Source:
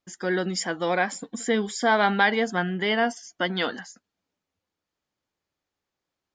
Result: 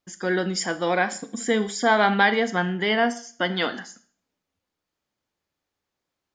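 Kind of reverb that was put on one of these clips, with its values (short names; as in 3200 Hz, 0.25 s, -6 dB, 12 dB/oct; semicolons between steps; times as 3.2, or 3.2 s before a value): Schroeder reverb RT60 0.45 s, combs from 26 ms, DRR 12 dB; gain +1.5 dB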